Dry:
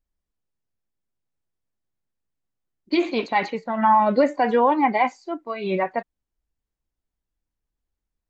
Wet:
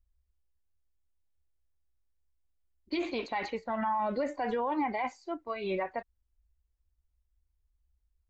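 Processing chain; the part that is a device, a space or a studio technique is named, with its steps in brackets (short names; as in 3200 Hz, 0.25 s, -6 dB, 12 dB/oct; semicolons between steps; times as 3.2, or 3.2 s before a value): car stereo with a boomy subwoofer (resonant low shelf 100 Hz +12.5 dB, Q 3; limiter -17.5 dBFS, peak gain reduction 9.5 dB); gain -6 dB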